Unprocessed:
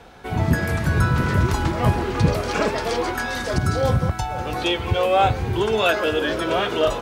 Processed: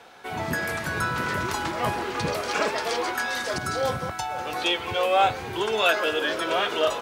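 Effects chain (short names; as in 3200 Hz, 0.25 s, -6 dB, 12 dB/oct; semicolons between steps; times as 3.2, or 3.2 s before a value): HPF 680 Hz 6 dB/oct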